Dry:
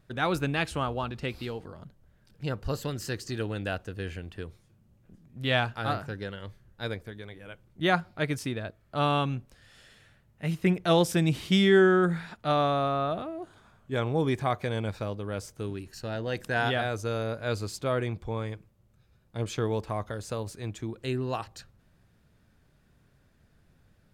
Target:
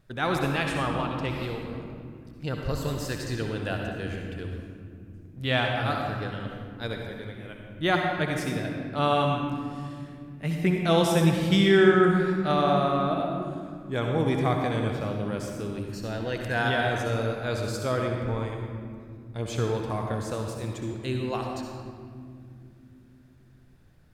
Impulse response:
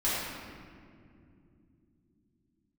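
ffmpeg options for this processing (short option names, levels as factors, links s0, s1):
-filter_complex "[0:a]asplit=2[s0][s1];[1:a]atrim=start_sample=2205,highshelf=f=9400:g=5,adelay=62[s2];[s1][s2]afir=irnorm=-1:irlink=0,volume=0.251[s3];[s0][s3]amix=inputs=2:normalize=0"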